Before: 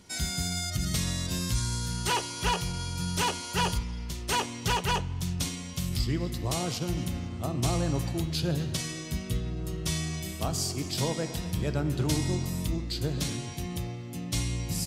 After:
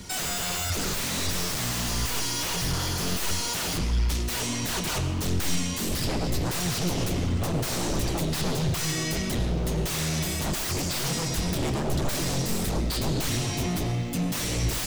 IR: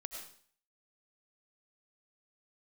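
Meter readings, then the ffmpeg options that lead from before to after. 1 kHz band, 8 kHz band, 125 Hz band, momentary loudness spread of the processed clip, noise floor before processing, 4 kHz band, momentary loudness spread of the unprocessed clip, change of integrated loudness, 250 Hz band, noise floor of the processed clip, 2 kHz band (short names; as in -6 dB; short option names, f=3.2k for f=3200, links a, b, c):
-0.5 dB, +5.0 dB, +1.5 dB, 1 LU, -39 dBFS, +3.5 dB, 6 LU, +3.0 dB, +3.0 dB, -30 dBFS, +4.0 dB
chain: -filter_complex "[0:a]highshelf=f=4.9k:g=7,acrossover=split=180|3100[a][b][c];[b]alimiter=level_in=5dB:limit=-24dB:level=0:latency=1:release=206,volume=-5dB[d];[a][d][c]amix=inputs=3:normalize=0,asoftclip=type=hard:threshold=-24.5dB,acrusher=bits=10:mix=0:aa=0.000001,aeval=exprs='0.0631*sin(PI/2*2.51*val(0)/0.0631)':c=same,flanger=delay=0.5:depth=7.6:regen=64:speed=1.5:shape=sinusoidal,asplit=2[e][f];[1:a]atrim=start_sample=2205,lowpass=8.9k,lowshelf=f=370:g=6[g];[f][g]afir=irnorm=-1:irlink=0,volume=-2dB[h];[e][h]amix=inputs=2:normalize=0"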